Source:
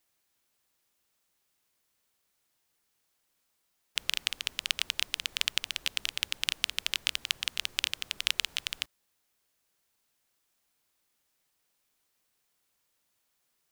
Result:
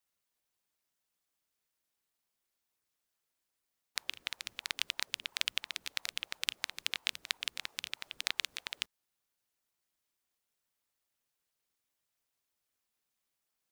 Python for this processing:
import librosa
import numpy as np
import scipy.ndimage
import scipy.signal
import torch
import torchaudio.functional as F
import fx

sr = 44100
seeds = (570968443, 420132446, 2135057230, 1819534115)

y = fx.hpss(x, sr, part='harmonic', gain_db=-9)
y = fx.ring_lfo(y, sr, carrier_hz=530.0, swing_pct=80, hz=3.0)
y = y * 10.0 ** (-2.5 / 20.0)